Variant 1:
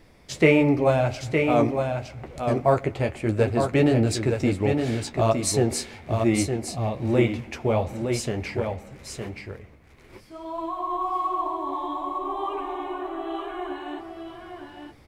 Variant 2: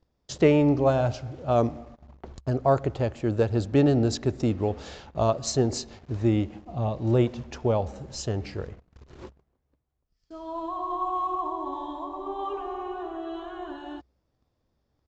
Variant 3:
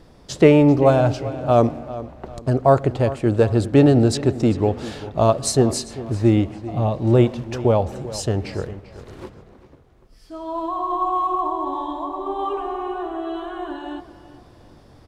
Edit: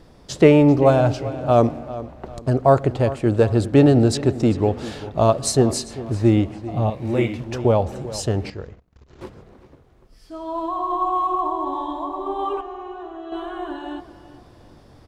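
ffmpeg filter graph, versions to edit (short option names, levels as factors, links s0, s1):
-filter_complex "[1:a]asplit=2[s0][s1];[2:a]asplit=4[s2][s3][s4][s5];[s2]atrim=end=6.902[s6];[0:a]atrim=start=6.898:end=7.402[s7];[s3]atrim=start=7.398:end=8.502[s8];[s0]atrim=start=8.498:end=9.212[s9];[s4]atrim=start=9.208:end=12.612[s10];[s1]atrim=start=12.608:end=13.322[s11];[s5]atrim=start=13.318[s12];[s6][s7]acrossfade=d=0.004:c1=hsin:c2=hsin[s13];[s13][s8]acrossfade=d=0.004:c1=hsin:c2=hsin[s14];[s14][s9]acrossfade=d=0.004:c1=hsin:c2=hsin[s15];[s15][s10]acrossfade=d=0.004:c1=hsin:c2=hsin[s16];[s16][s11]acrossfade=d=0.004:c1=hsin:c2=hsin[s17];[s17][s12]acrossfade=d=0.004:c1=hsin:c2=hsin"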